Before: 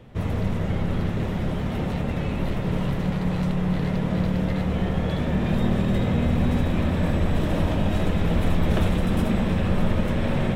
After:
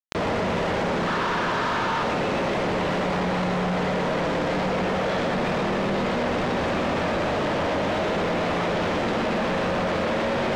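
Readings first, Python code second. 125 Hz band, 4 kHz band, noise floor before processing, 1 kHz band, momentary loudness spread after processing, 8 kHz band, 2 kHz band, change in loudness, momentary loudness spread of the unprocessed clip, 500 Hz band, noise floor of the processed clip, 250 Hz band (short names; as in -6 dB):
-8.5 dB, +6.0 dB, -27 dBFS, +9.0 dB, 1 LU, n/a, +8.0 dB, 0.0 dB, 4 LU, +6.0 dB, -25 dBFS, -3.0 dB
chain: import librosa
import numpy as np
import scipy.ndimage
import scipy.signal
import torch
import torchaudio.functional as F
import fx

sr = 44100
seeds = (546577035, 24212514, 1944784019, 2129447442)

p1 = fx.spec_box(x, sr, start_s=1.07, length_s=0.96, low_hz=890.0, high_hz=1800.0, gain_db=12)
p2 = scipy.signal.sosfilt(scipy.signal.butter(2, 610.0, 'highpass', fs=sr, output='sos'), p1)
p3 = fx.tilt_eq(p2, sr, slope=-3.0)
p4 = fx.rider(p3, sr, range_db=5, speed_s=2.0)
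p5 = p3 + (p4 * 10.0 ** (-2.5 / 20.0))
p6 = fx.quant_companded(p5, sr, bits=2)
p7 = fx.air_absorb(p6, sr, metres=140.0)
p8 = p7 + 10.0 ** (-6.0 / 20.0) * np.pad(p7, (int(122 * sr / 1000.0), 0))[:len(p7)]
y = fx.env_flatten(p8, sr, amount_pct=70)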